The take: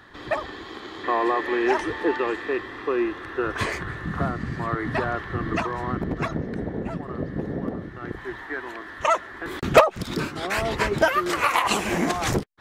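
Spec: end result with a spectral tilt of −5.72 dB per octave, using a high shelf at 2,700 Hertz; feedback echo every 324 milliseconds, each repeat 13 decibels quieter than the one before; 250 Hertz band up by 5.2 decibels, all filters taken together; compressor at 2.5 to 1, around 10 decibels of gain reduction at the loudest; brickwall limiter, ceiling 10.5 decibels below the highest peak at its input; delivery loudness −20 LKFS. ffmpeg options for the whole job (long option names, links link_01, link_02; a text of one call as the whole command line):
ffmpeg -i in.wav -af "equalizer=frequency=250:width_type=o:gain=7.5,highshelf=frequency=2700:gain=-8,acompressor=threshold=-23dB:ratio=2.5,alimiter=limit=-20.5dB:level=0:latency=1,aecho=1:1:324|648|972:0.224|0.0493|0.0108,volume=10.5dB" out.wav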